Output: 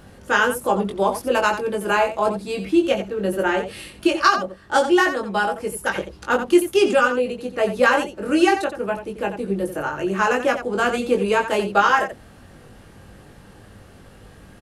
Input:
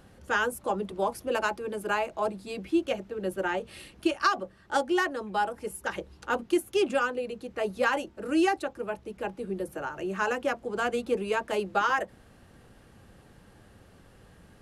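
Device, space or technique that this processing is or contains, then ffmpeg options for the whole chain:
slapback doubling: -filter_complex "[0:a]asplit=3[a][b][c];[b]adelay=20,volume=-4dB[d];[c]adelay=88,volume=-9.5dB[e];[a][d][e]amix=inputs=3:normalize=0,volume=7.5dB"

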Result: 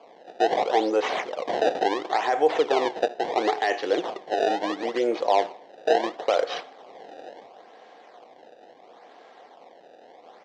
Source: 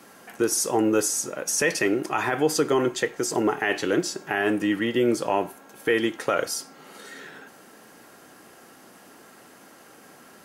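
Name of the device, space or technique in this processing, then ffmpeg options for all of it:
circuit-bent sampling toy: -filter_complex "[0:a]acrusher=samples=23:mix=1:aa=0.000001:lfo=1:lforange=36.8:lforate=0.73,highpass=460,equalizer=f=490:t=q:w=4:g=6,equalizer=f=730:t=q:w=4:g=9,equalizer=f=1.4k:t=q:w=4:g=-8,equalizer=f=2.6k:t=q:w=4:g=-5,equalizer=f=4.7k:t=q:w=4:g=-4,lowpass=f=4.9k:w=0.5412,lowpass=f=4.9k:w=1.3066,asplit=2[a][b];[b]adelay=77,lowpass=f=4.9k:p=1,volume=-21dB,asplit=2[c][d];[d]adelay=77,lowpass=f=4.9k:p=1,volume=0.54,asplit=2[e][f];[f]adelay=77,lowpass=f=4.9k:p=1,volume=0.54,asplit=2[g][h];[h]adelay=77,lowpass=f=4.9k:p=1,volume=0.54[i];[a][c][e][g][i]amix=inputs=5:normalize=0"

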